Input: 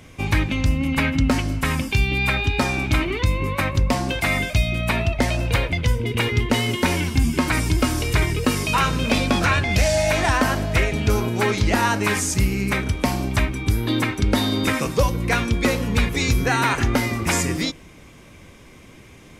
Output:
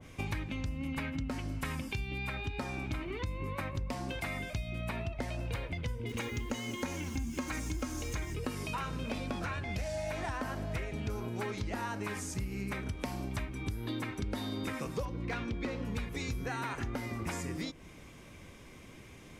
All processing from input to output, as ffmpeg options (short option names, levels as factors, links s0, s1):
-filter_complex "[0:a]asettb=1/sr,asplit=3[s0][s1][s2];[s0]atrim=end=6.094[s3];[s1]atrim=start=6.09:end=8.35,asetpts=PTS-STARTPTS,afade=t=in:d=0.004:c=qsin,afade=t=out:st=2.256:d=0.004:c=qsin,equalizer=f=6500:w=6.3:g=14.5,aecho=1:1:3.7:0.45,atrim=end_sample=99666,acrusher=bits=5:mix=0:aa=0.5[s4];[s2]atrim=start=8.346[s5];[s3][s4]acrossfade=d=0.004:c1=hsin:c2=qsin[s6];[s6][s5]acrossfade=d=0.004:c1=qsin:c2=hsin,asettb=1/sr,asplit=3[s7][s8][s9];[s7]atrim=end=15.054[s10];[s8]atrim=start=15.05:end=15.85,asetpts=PTS-STARTPTS,afade=t=in:d=0.004:c=qsin,afade=t=out:st=0.796:d=0.004:c=qsin,lowpass=4600,asoftclip=type=hard:threshold=0.2,equalizer=f=300:t=o:w=0.25:g=7[s11];[s9]atrim=start=15.846[s12];[s10][s11]acrossfade=d=0.004:c1=hsin:c2=qsin[s13];[s13][s12]acrossfade=d=0.004:c1=qsin:c2=hsin,acompressor=threshold=0.0447:ratio=6,adynamicequalizer=threshold=0.00708:dfrequency=1900:dqfactor=0.7:tfrequency=1900:tqfactor=0.7:attack=5:release=100:ratio=0.375:range=2.5:mode=cutabove:tftype=highshelf,volume=0.473"